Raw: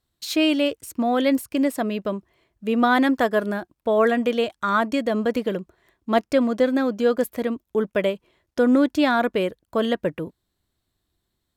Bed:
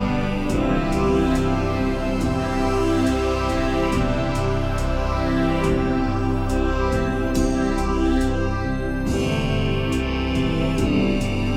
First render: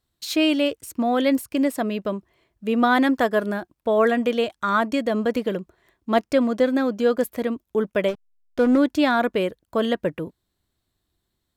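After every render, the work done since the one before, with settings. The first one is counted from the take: 8.08–8.78 backlash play -26.5 dBFS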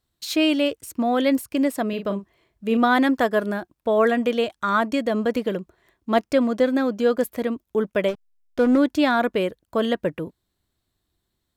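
1.89–2.77 doubler 40 ms -8.5 dB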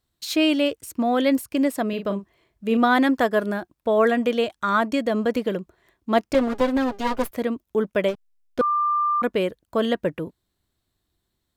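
6.34–7.31 minimum comb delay 7.4 ms; 8.61–9.22 bleep 1190 Hz -18.5 dBFS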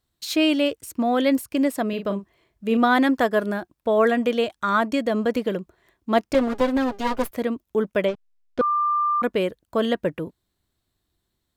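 8.05–8.63 air absorption 76 m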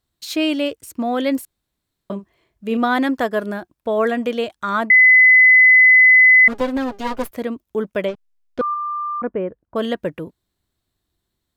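1.45–2.1 room tone; 4.9–6.48 bleep 2020 Hz -6.5 dBFS; 8.74–9.76 Gaussian blur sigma 5 samples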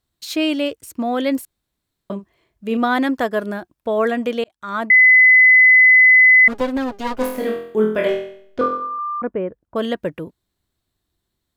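4.44–4.93 fade in; 7.18–8.99 flutter echo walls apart 4 m, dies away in 0.61 s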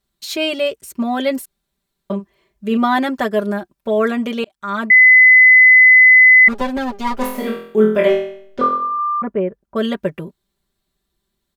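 comb 5.1 ms, depth 90%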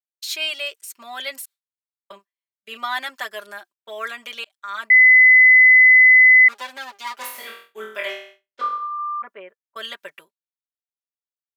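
Bessel high-pass 1900 Hz, order 2; expander -42 dBFS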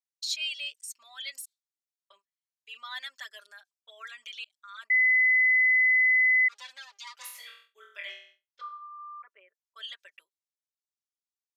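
formant sharpening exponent 1.5; band-pass 6000 Hz, Q 1.3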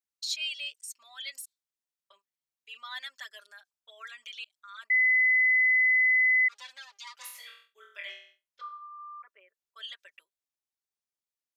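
gain -1 dB

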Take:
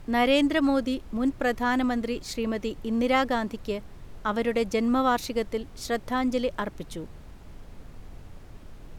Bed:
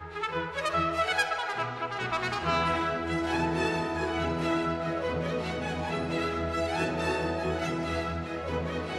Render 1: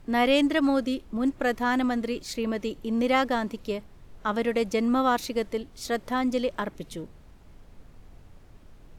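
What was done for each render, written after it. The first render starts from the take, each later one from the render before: noise print and reduce 6 dB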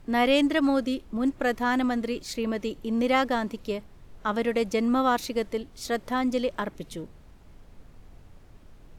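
nothing audible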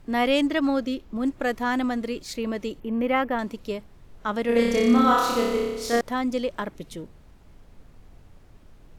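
0.47–1.16 bell 9400 Hz -9 dB 0.43 oct; 2.8–3.39 band shelf 6000 Hz -16 dB; 4.46–6.01 flutter echo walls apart 5.1 m, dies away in 1.2 s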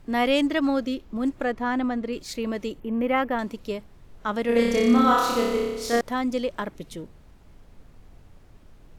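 1.44–2.13 LPF 2000 Hz 6 dB/oct; 2.73–3.18 bell 4800 Hz -4.5 dB 1.1 oct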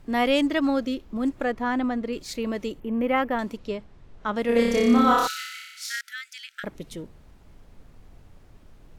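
3.57–4.37 air absorption 68 m; 5.27–6.64 brick-wall FIR high-pass 1300 Hz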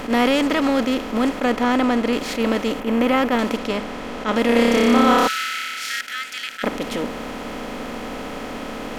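per-bin compression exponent 0.4; attack slew limiter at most 230 dB/s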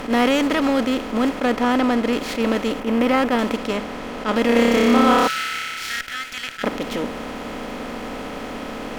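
running maximum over 3 samples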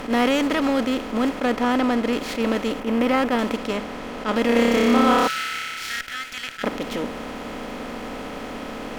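gain -2 dB

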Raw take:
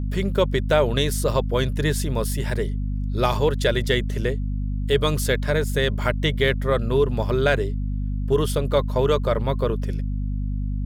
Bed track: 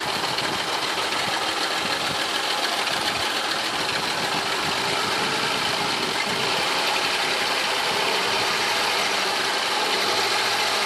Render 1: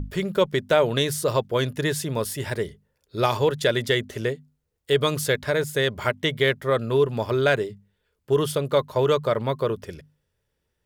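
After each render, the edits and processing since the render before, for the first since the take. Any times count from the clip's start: notches 50/100/150/200/250 Hz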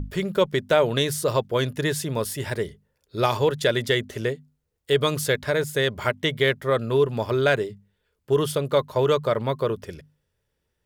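nothing audible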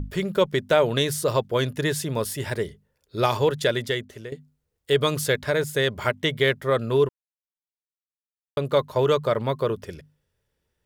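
3.58–4.32 fade out, to -14.5 dB; 7.09–8.57 mute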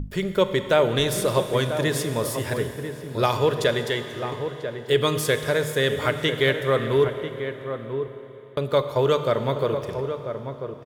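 outdoor echo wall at 170 m, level -8 dB; Schroeder reverb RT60 3.4 s, combs from 26 ms, DRR 8.5 dB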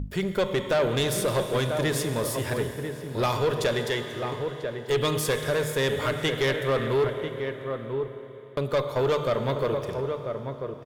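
tube stage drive 18 dB, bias 0.25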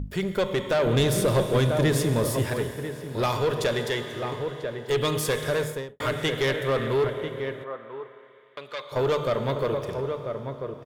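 0.86–2.46 low shelf 400 Hz +7 dB; 5.58–6 studio fade out; 7.63–8.91 band-pass 950 Hz -> 3200 Hz, Q 0.85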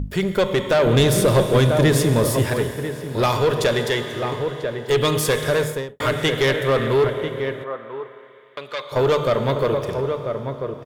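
gain +6 dB

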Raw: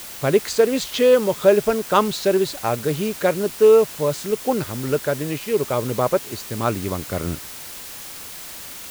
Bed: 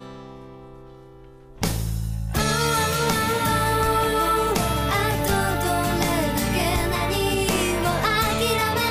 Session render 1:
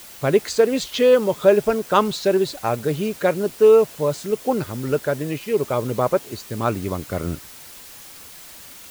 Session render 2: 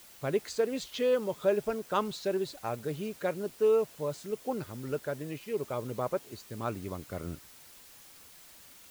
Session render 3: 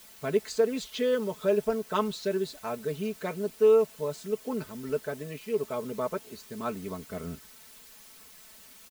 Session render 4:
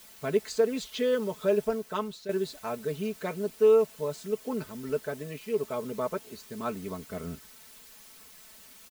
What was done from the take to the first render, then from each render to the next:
denoiser 6 dB, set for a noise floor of -36 dBFS
gain -12.5 dB
notch 790 Hz, Q 12; comb 4.6 ms, depth 74%
1.61–2.29 fade out linear, to -10.5 dB

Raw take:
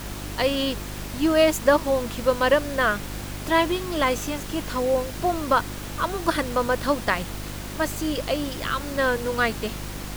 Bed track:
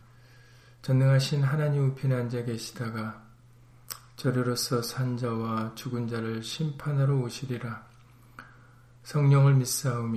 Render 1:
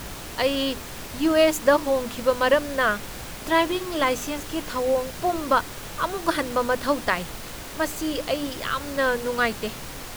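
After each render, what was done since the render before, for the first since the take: de-hum 50 Hz, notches 7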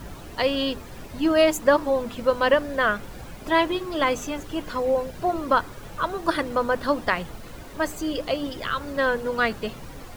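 denoiser 11 dB, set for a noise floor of -37 dBFS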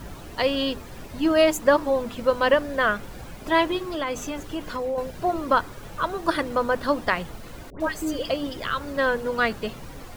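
3.94–4.98 compressor 3:1, threshold -25 dBFS; 7.7–8.3 dispersion highs, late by 0.102 s, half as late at 1200 Hz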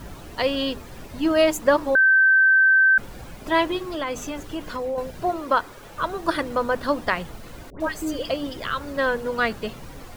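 1.95–2.98 bleep 1550 Hz -12.5 dBFS; 5.33–5.97 tone controls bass -8 dB, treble -1 dB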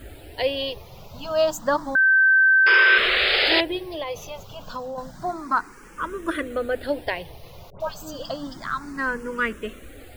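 2.66–3.61 painted sound noise 350–5200 Hz -17 dBFS; endless phaser +0.3 Hz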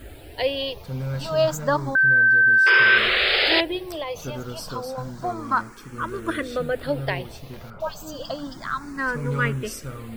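add bed track -7 dB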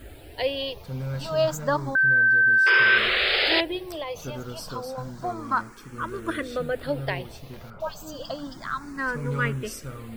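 gain -2.5 dB

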